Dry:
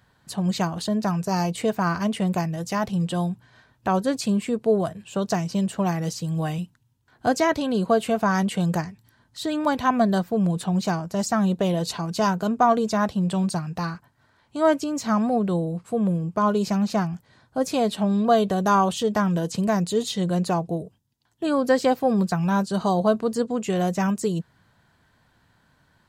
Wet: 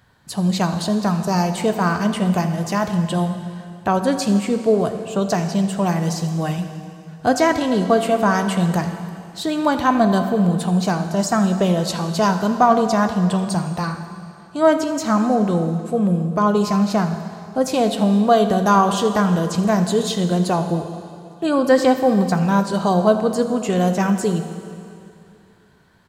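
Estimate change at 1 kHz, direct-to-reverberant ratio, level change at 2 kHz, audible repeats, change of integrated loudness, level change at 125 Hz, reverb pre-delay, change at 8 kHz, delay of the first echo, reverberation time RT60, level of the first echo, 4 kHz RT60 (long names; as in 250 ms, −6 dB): +5.0 dB, 7.0 dB, +5.0 dB, 1, +5.0 dB, +5.0 dB, 7 ms, +4.5 dB, 82 ms, 2.6 s, −17.5 dB, 2.4 s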